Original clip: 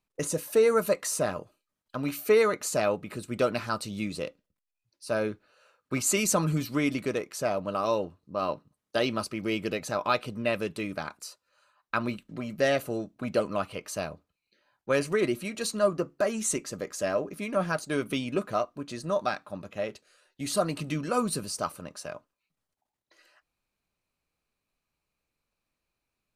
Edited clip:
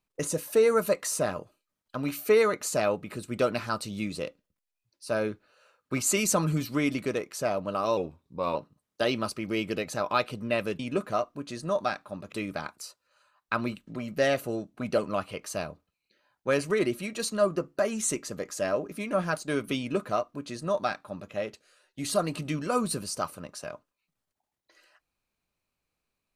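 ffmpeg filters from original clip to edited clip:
ffmpeg -i in.wav -filter_complex "[0:a]asplit=5[link_01][link_02][link_03][link_04][link_05];[link_01]atrim=end=7.974[link_06];[link_02]atrim=start=7.97:end=8.5,asetpts=PTS-STARTPTS,asetrate=40131,aresample=44100[link_07];[link_03]atrim=start=8.496:end=10.742[link_08];[link_04]atrim=start=18.198:end=19.732[link_09];[link_05]atrim=start=10.738[link_10];[link_06][link_07]acrossfade=duration=0.004:curve1=hsin:curve2=hsin[link_11];[link_11][link_08]acrossfade=duration=0.004:curve1=hsin:curve2=hsin[link_12];[link_12][link_09]acrossfade=duration=0.004:curve1=hsin:curve2=hsin[link_13];[link_13][link_10]acrossfade=duration=0.004:curve1=hsin:curve2=hsin" out.wav

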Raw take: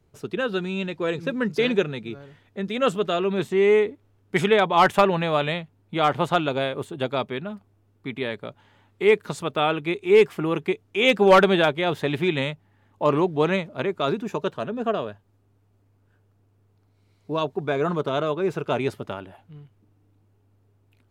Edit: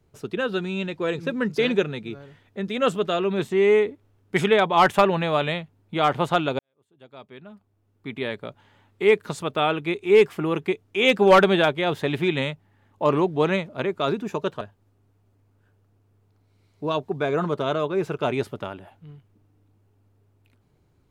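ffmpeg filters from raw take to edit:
ffmpeg -i in.wav -filter_complex "[0:a]asplit=3[link_01][link_02][link_03];[link_01]atrim=end=6.59,asetpts=PTS-STARTPTS,afade=type=out:start_time=6.586:duration=0.004:curve=hsin[link_04];[link_02]atrim=start=6.59:end=14.612,asetpts=PTS-STARTPTS,afade=type=in:duration=1.68:curve=qua[link_05];[link_03]atrim=start=15.078[link_06];[link_04][link_05]concat=n=2:v=0:a=1[link_07];[link_07][link_06]acrossfade=duration=0.004:curve1=hsin:curve2=hsin" out.wav

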